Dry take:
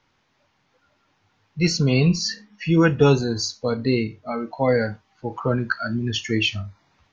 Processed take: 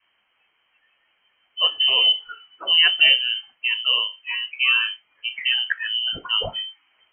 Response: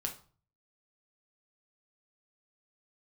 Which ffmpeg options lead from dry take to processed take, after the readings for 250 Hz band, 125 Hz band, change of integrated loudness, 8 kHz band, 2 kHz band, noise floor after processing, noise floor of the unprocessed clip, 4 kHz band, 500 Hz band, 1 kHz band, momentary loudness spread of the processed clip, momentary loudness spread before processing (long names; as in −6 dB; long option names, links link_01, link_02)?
below −30 dB, below −25 dB, +3.0 dB, can't be measured, +6.5 dB, −68 dBFS, −67 dBFS, +13.5 dB, −17.0 dB, −5.5 dB, 15 LU, 13 LU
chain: -af "lowpass=frequency=2700:width_type=q:width=0.5098,lowpass=frequency=2700:width_type=q:width=0.6013,lowpass=frequency=2700:width_type=q:width=0.9,lowpass=frequency=2700:width_type=q:width=2.563,afreqshift=-3200,adynamicequalizer=threshold=0.00794:dfrequency=410:dqfactor=0.78:tfrequency=410:tqfactor=0.78:attack=5:release=100:ratio=0.375:range=2:mode=cutabove:tftype=bell"